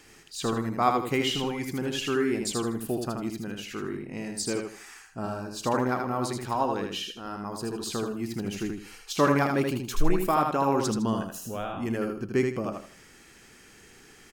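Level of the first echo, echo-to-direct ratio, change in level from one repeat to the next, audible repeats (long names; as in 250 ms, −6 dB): −4.5 dB, −4.0 dB, −11.0 dB, 3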